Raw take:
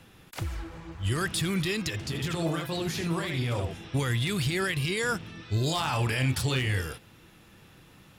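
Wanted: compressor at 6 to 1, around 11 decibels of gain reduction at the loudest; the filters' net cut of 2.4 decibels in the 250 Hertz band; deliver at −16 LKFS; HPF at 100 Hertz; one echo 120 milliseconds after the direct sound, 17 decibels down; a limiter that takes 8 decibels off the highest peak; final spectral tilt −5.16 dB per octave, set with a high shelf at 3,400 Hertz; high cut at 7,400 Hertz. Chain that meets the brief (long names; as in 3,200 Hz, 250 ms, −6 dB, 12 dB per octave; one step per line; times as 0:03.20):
high-pass filter 100 Hz
low-pass filter 7,400 Hz
parametric band 250 Hz −3.5 dB
high-shelf EQ 3,400 Hz −4 dB
downward compressor 6 to 1, threshold −37 dBFS
brickwall limiter −34.5 dBFS
single-tap delay 120 ms −17 dB
level +27.5 dB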